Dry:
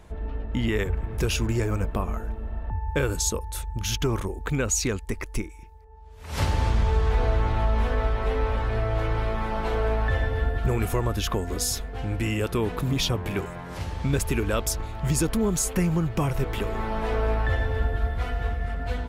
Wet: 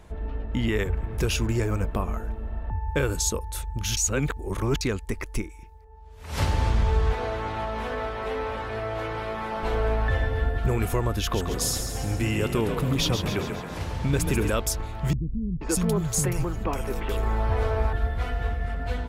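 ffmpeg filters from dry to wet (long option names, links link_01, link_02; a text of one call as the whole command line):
ffmpeg -i in.wav -filter_complex "[0:a]asettb=1/sr,asplit=3[link_01][link_02][link_03];[link_01]atrim=end=7.134[link_04];[link_02]atrim=start=7.13:end=9.63,asetpts=PTS-STARTPTS,afade=type=in:duration=0.004:curve=qsin,afade=type=out:start_time=2.496:duration=0.004:curve=qsin,highpass=frequency=260:poles=1[link_05];[link_03]atrim=start=9.626[link_06];[link_04][link_05]acrossfade=duration=0.004:curve1=hsin:curve2=qsin[link_07];[link_07][link_06]acrossfade=duration=0.004:curve1=qsin:curve2=hsin,asettb=1/sr,asplit=3[link_08][link_09][link_10];[link_08]atrim=end=11.194[link_11];[link_09]atrim=start=11.19:end=14.51,asetpts=PTS-STARTPTS,afade=type=in:duration=0.004:curve=qsin,afade=type=out:start_time=3.316:duration=0.004:curve=qsin,asplit=8[link_12][link_13][link_14][link_15][link_16][link_17][link_18][link_19];[link_13]adelay=137,afreqshift=32,volume=-7.5dB[link_20];[link_14]adelay=274,afreqshift=64,volume=-12.2dB[link_21];[link_15]adelay=411,afreqshift=96,volume=-17dB[link_22];[link_16]adelay=548,afreqshift=128,volume=-21.7dB[link_23];[link_17]adelay=685,afreqshift=160,volume=-26.4dB[link_24];[link_18]adelay=822,afreqshift=192,volume=-31.2dB[link_25];[link_19]adelay=959,afreqshift=224,volume=-35.9dB[link_26];[link_12][link_20][link_21][link_22][link_23][link_24][link_25][link_26]amix=inputs=8:normalize=0,atrim=end_sample=146412[link_27];[link_10]atrim=start=14.506[link_28];[link_11][link_27]acrossfade=duration=0.004:curve1=hsin:curve2=qsin[link_29];[link_29][link_28]acrossfade=duration=0.004:curve1=qsin:curve2=hsin,asettb=1/sr,asplit=3[link_30][link_31][link_32];[link_30]atrim=end=15.134[link_33];[link_31]atrim=start=15.13:end=17.93,asetpts=PTS-STARTPTS,afade=type=in:duration=0.004:curve=qsin,afade=type=out:start_time=2.796:duration=0.004:curve=qsin,acrossover=split=230|2700[link_34][link_35][link_36];[link_35]adelay=480[link_37];[link_36]adelay=560[link_38];[link_34][link_37][link_38]amix=inputs=3:normalize=0,atrim=end_sample=123480[link_39];[link_32]atrim=start=17.926[link_40];[link_33][link_39]acrossfade=duration=0.004:curve1=hsin:curve2=qsin[link_41];[link_41][link_40]acrossfade=duration=0.004:curve1=qsin:curve2=hsin,asplit=3[link_42][link_43][link_44];[link_42]atrim=end=3.972[link_45];[link_43]atrim=start=3.968:end=4.812,asetpts=PTS-STARTPTS,areverse[link_46];[link_44]atrim=start=4.808[link_47];[link_45][link_46]acrossfade=duration=0.004:curve1=hsin:curve2=hsin[link_48];[link_48][link_47]acrossfade=duration=0.004:curve1=hsin:curve2=hsin" out.wav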